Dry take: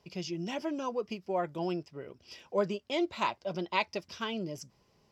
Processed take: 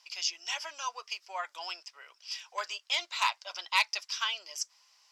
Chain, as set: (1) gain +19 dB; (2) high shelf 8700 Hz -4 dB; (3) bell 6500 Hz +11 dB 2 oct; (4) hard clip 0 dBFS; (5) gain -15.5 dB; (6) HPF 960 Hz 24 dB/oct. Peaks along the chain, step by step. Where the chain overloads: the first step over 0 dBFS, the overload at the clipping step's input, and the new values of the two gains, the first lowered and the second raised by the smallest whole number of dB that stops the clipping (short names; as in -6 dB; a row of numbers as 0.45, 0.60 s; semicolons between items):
+5.5, +5.5, +8.5, 0.0, -15.5, -11.5 dBFS; step 1, 8.5 dB; step 1 +10 dB, step 5 -6.5 dB